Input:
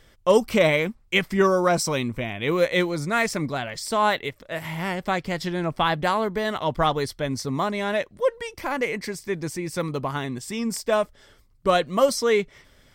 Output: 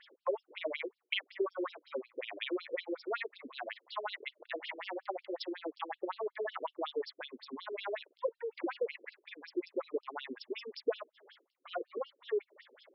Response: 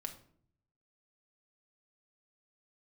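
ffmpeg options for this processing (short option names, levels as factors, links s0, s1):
-af "acompressor=threshold=0.02:ratio=6,lowshelf=f=250:t=q:w=1.5:g=-9.5,afftfilt=real='re*between(b*sr/1024,340*pow(4000/340,0.5+0.5*sin(2*PI*5.4*pts/sr))/1.41,340*pow(4000/340,0.5+0.5*sin(2*PI*5.4*pts/sr))*1.41)':imag='im*between(b*sr/1024,340*pow(4000/340,0.5+0.5*sin(2*PI*5.4*pts/sr))/1.41,340*pow(4000/340,0.5+0.5*sin(2*PI*5.4*pts/sr))*1.41)':win_size=1024:overlap=0.75,volume=1.58"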